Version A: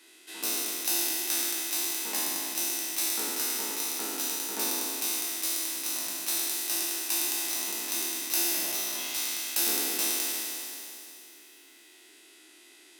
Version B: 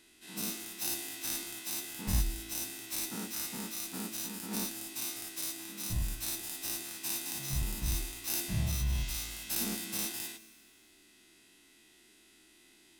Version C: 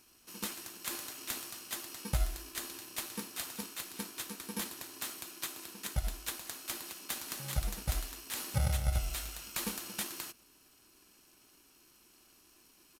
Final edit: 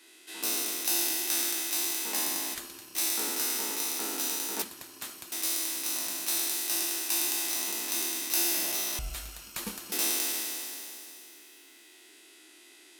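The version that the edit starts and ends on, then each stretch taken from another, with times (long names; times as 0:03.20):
A
0:02.55–0:02.95: punch in from C
0:04.62–0:05.32: punch in from C
0:08.99–0:09.92: punch in from C
not used: B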